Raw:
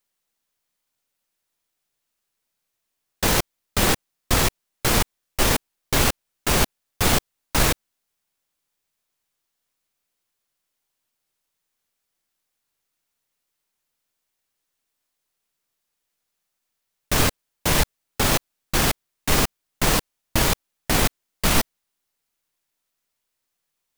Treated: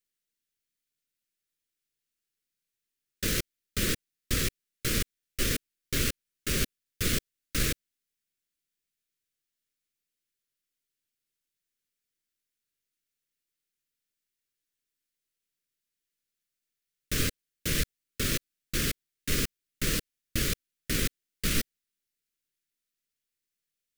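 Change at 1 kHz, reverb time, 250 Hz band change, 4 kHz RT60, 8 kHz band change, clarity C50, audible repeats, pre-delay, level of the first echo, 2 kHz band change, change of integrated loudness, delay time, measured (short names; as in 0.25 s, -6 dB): -20.0 dB, none, -8.0 dB, none, -8.0 dB, none, none, none, none, -9.0 dB, -8.5 dB, none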